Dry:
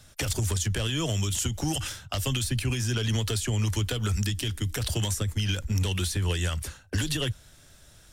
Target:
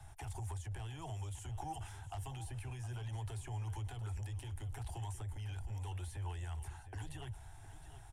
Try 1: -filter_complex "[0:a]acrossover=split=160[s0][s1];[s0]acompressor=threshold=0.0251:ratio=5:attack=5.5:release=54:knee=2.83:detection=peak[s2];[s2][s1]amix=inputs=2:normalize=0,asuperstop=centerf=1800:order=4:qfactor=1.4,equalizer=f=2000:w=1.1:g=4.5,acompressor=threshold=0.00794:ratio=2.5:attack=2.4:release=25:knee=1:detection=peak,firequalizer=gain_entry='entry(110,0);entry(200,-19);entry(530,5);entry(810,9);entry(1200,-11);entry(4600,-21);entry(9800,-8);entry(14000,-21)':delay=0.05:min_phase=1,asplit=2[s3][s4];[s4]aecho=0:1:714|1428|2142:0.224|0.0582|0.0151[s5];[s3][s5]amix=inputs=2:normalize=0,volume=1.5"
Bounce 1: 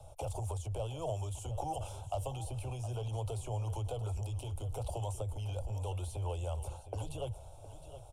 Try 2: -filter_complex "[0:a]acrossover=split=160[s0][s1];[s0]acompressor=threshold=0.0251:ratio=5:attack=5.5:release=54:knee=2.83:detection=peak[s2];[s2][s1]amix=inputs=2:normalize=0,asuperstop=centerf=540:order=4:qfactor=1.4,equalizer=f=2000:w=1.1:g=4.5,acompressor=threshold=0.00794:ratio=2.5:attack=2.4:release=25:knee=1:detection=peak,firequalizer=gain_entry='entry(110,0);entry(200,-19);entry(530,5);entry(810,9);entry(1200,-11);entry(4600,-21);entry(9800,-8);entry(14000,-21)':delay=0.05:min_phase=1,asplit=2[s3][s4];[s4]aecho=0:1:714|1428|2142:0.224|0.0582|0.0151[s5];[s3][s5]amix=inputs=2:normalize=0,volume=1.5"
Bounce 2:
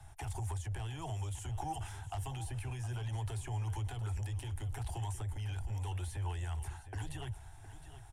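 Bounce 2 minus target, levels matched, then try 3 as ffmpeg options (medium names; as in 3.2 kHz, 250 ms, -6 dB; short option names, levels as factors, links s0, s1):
compression: peak gain reduction -4 dB
-filter_complex "[0:a]acrossover=split=160[s0][s1];[s0]acompressor=threshold=0.0251:ratio=5:attack=5.5:release=54:knee=2.83:detection=peak[s2];[s2][s1]amix=inputs=2:normalize=0,asuperstop=centerf=540:order=4:qfactor=1.4,equalizer=f=2000:w=1.1:g=4.5,acompressor=threshold=0.00355:ratio=2.5:attack=2.4:release=25:knee=1:detection=peak,firequalizer=gain_entry='entry(110,0);entry(200,-19);entry(530,5);entry(810,9);entry(1200,-11);entry(4600,-21);entry(9800,-8);entry(14000,-21)':delay=0.05:min_phase=1,asplit=2[s3][s4];[s4]aecho=0:1:714|1428|2142:0.224|0.0582|0.0151[s5];[s3][s5]amix=inputs=2:normalize=0,volume=1.5"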